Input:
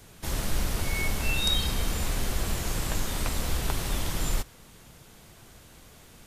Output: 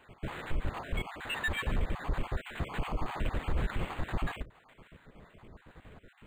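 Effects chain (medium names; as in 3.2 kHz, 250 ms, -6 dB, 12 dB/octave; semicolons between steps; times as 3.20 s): random holes in the spectrogram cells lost 70%; in parallel at -11 dB: hard clipper -30.5 dBFS, distortion -7 dB; on the sum: peak limiter -21.5 dBFS, peak gain reduction 5.5 dB; decimation joined by straight lines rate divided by 8×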